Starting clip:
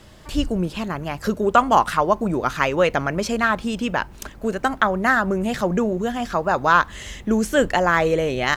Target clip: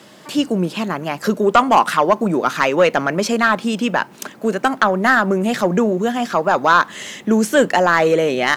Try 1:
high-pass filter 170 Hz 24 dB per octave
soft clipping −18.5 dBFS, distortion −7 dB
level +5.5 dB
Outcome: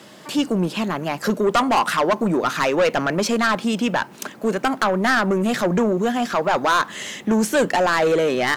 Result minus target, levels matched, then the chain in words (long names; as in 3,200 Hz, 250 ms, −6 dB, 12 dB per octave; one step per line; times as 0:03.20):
soft clipping: distortion +9 dB
high-pass filter 170 Hz 24 dB per octave
soft clipping −8.5 dBFS, distortion −16 dB
level +5.5 dB